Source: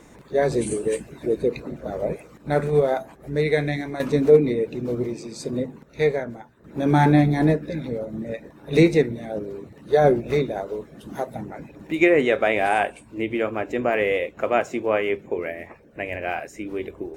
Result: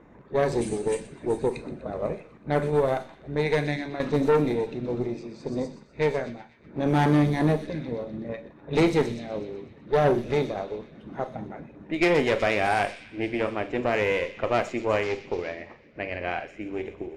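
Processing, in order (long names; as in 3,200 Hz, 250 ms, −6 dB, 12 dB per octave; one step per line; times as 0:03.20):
0:15.03–0:15.56: variable-slope delta modulation 32 kbit/s
tube saturation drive 15 dB, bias 0.65
on a send: delay with a high-pass on its return 124 ms, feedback 76%, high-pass 4,300 Hz, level −6 dB
on the sum: four-comb reverb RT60 0.32 s, combs from 30 ms, DRR 11.5 dB
low-pass that shuts in the quiet parts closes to 1,700 Hz, open at −19 dBFS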